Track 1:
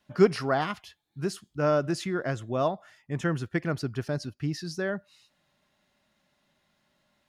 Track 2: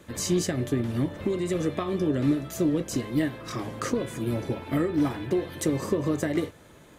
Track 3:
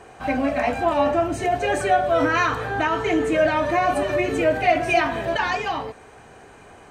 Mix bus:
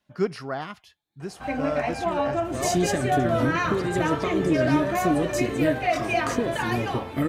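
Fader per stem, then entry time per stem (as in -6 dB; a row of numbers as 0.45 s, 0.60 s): -5.0 dB, +1.0 dB, -5.5 dB; 0.00 s, 2.45 s, 1.20 s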